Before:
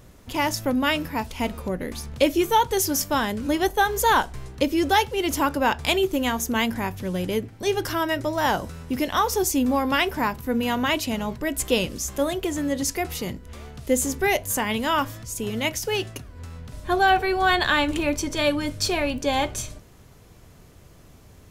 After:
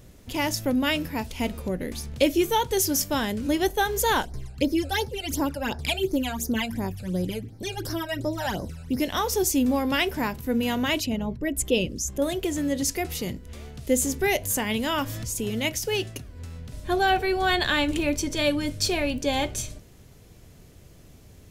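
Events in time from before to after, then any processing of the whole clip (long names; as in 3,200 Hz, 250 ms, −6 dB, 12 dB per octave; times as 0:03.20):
0:04.25–0:09.00: all-pass phaser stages 12, 2.8 Hz, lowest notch 320–3,000 Hz
0:11.00–0:12.22: spectral envelope exaggerated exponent 1.5
0:14.22–0:15.55: upward compression, threshold −24 dBFS
whole clip: parametric band 1,100 Hz −7 dB 1.2 octaves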